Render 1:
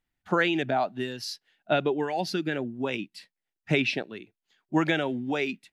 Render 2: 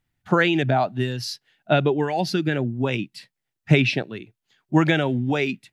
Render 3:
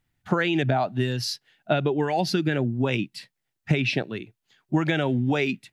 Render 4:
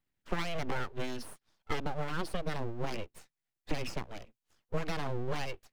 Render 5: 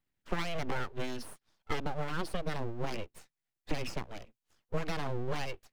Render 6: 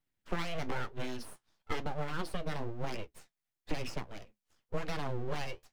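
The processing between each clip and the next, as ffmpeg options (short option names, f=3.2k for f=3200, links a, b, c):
-af "equalizer=f=120:t=o:w=0.85:g=12,volume=4.5dB"
-af "acompressor=threshold=-20dB:ratio=6,volume=1.5dB"
-filter_complex "[0:a]acrossover=split=130|2300[a][b][c];[c]alimiter=level_in=3dB:limit=-24dB:level=0:latency=1:release=476,volume=-3dB[d];[a][b][d]amix=inputs=3:normalize=0,aeval=exprs='abs(val(0))':c=same,volume=-8.5dB"
-af anull
-af "flanger=delay=6.4:depth=7.7:regen=-58:speed=1:shape=triangular,volume=2.5dB"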